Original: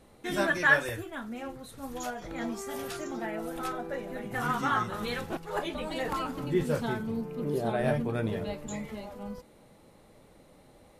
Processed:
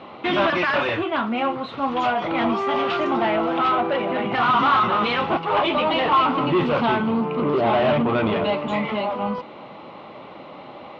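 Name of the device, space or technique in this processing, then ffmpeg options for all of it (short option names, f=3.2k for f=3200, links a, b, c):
overdrive pedal into a guitar cabinet: -filter_complex "[0:a]asplit=2[a][b];[b]highpass=f=720:p=1,volume=31dB,asoftclip=type=tanh:threshold=-9.5dB[c];[a][c]amix=inputs=2:normalize=0,lowpass=f=2k:p=1,volume=-6dB,highpass=86,equalizer=f=470:t=q:w=4:g=-6,equalizer=f=1.1k:t=q:w=4:g=5,equalizer=f=1.7k:t=q:w=4:g=-9,equalizer=f=2.9k:t=q:w=4:g=4,lowpass=f=3.6k:w=0.5412,lowpass=f=3.6k:w=1.3066"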